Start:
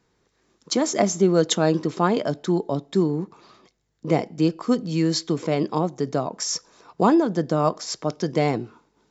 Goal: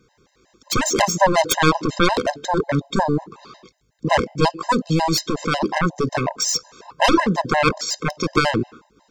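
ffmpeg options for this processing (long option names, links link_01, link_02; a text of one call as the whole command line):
ffmpeg -i in.wav -af "aeval=exprs='0.562*(cos(1*acos(clip(val(0)/0.562,-1,1)))-cos(1*PI/2))+0.251*(cos(7*acos(clip(val(0)/0.562,-1,1)))-cos(7*PI/2))':channel_layout=same,afftfilt=real='re*gt(sin(2*PI*5.5*pts/sr)*(1-2*mod(floor(b*sr/1024/530),2)),0)':imag='im*gt(sin(2*PI*5.5*pts/sr)*(1-2*mod(floor(b*sr/1024/530),2)),0)':win_size=1024:overlap=0.75,volume=4.5dB" out.wav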